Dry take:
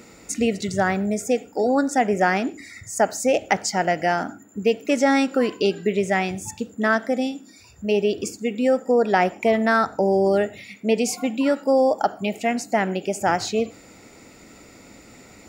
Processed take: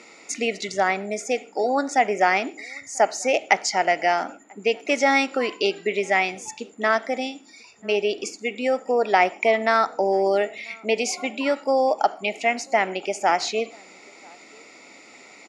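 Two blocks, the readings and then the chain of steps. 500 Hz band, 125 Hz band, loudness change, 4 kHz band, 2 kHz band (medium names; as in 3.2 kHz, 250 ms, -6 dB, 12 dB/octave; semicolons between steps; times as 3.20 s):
-1.5 dB, under -10 dB, -0.5 dB, +2.5 dB, +2.0 dB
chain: cabinet simulation 440–8500 Hz, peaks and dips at 510 Hz -4 dB, 1.6 kHz -7 dB, 2.2 kHz +6 dB, 8 kHz -8 dB; echo from a far wall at 170 m, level -27 dB; trim +2.5 dB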